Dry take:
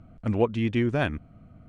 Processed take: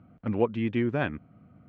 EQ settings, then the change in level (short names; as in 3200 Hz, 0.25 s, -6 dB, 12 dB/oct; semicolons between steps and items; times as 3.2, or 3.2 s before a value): BPF 120–2800 Hz; notch 650 Hz, Q 12; -1.5 dB